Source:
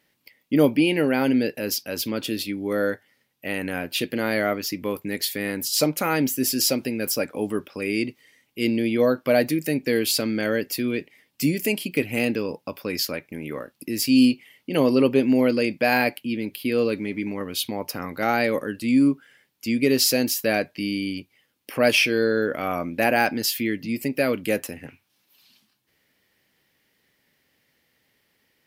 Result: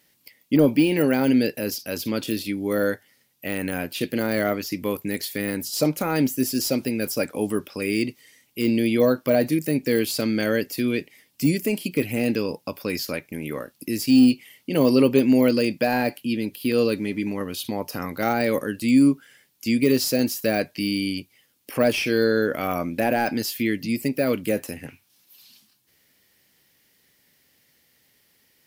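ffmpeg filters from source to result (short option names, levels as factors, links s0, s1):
-filter_complex "[0:a]asettb=1/sr,asplit=3[s0][s1][s2];[s0]atrim=end=15.494[s3];[s1]atrim=start=15.49:end=18.01,asetpts=PTS-STARTPTS,afade=t=in:d=0.004:c=qsin,afade=t=out:st=2.516:d=0.004:c=qsin,bandreject=f=2200:w=12[s4];[s2]atrim=start=18.006[s5];[s3][s4]acrossfade=d=0.004:c1=hsin:c2=qsin[s6];[s6][s5]acrossfade=d=0.004:c1=qsin:c2=hsin,deesser=0.85,bass=f=250:g=2,treble=f=4000:g=9,volume=1.12"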